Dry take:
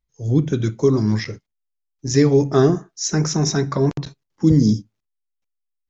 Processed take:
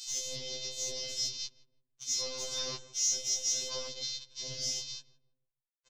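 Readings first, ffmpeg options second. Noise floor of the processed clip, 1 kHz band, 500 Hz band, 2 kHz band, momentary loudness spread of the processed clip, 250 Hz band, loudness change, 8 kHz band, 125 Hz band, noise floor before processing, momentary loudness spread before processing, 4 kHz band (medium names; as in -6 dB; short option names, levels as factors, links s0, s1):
under -85 dBFS, -22.0 dB, -25.5 dB, -15.0 dB, 11 LU, -39.0 dB, -14.5 dB, no reading, -35.5 dB, -78 dBFS, 10 LU, -0.5 dB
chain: -filter_complex "[0:a]aeval=exprs='val(0)+0.5*0.0708*sgn(val(0))':c=same,aexciter=amount=14.1:drive=6.6:freq=3500,lowshelf=f=65:g=-9,bandreject=f=60:t=h:w=6,bandreject=f=120:t=h:w=6,bandreject=f=180:t=h:w=6,bandreject=f=240:t=h:w=6,bandreject=f=300:t=h:w=6,areverse,acompressor=threshold=0.178:ratio=10,areverse,asoftclip=type=tanh:threshold=0.2,aeval=exprs='val(0)+0.0447*sin(2*PI*3500*n/s)':c=same,afftfilt=real='hypot(re,im)*cos(PI*b)':imag='0':win_size=1024:overlap=0.75,aresample=16000,acrusher=bits=4:mix=0:aa=0.000001,aresample=44100,afwtdn=0.0224,asplit=2[s0][s1];[s1]adelay=165,lowpass=f=920:p=1,volume=0.2,asplit=2[s2][s3];[s3]adelay=165,lowpass=f=920:p=1,volume=0.4,asplit=2[s4][s5];[s5]adelay=165,lowpass=f=920:p=1,volume=0.4,asplit=2[s6][s7];[s7]adelay=165,lowpass=f=920:p=1,volume=0.4[s8];[s0][s2][s4][s6][s8]amix=inputs=5:normalize=0,afftfilt=real='re*2.45*eq(mod(b,6),0)':imag='im*2.45*eq(mod(b,6),0)':win_size=2048:overlap=0.75,volume=0.422"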